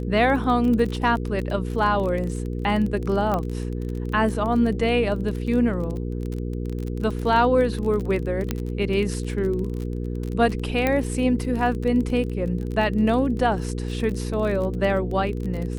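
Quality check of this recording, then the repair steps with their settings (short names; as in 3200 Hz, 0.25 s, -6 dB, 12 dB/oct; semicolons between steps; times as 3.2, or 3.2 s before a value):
crackle 26/s -28 dBFS
hum 60 Hz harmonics 8 -28 dBFS
3.34 pop -13 dBFS
8.51 pop -10 dBFS
10.87 pop -9 dBFS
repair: de-click; de-hum 60 Hz, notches 8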